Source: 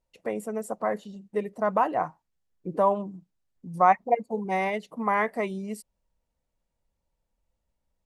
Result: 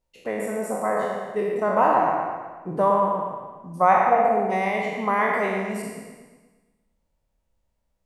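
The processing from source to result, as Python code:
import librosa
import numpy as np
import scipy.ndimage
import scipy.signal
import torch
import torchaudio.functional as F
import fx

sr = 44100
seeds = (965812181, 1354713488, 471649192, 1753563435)

p1 = fx.spec_trails(x, sr, decay_s=1.29)
y = p1 + fx.echo_bbd(p1, sr, ms=115, stages=2048, feedback_pct=46, wet_db=-5.0, dry=0)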